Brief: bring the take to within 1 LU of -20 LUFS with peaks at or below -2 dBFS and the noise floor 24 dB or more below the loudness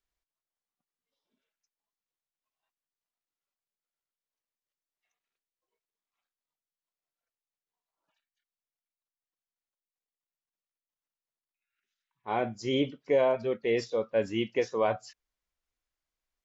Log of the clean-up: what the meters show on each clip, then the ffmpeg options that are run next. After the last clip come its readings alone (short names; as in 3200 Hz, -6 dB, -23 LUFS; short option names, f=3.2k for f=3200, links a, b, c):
loudness -29.5 LUFS; peak -14.5 dBFS; loudness target -20.0 LUFS
-> -af "volume=9.5dB"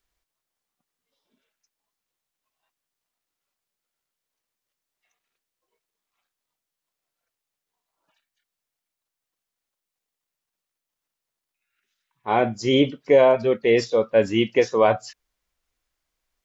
loudness -20.0 LUFS; peak -5.0 dBFS; noise floor -86 dBFS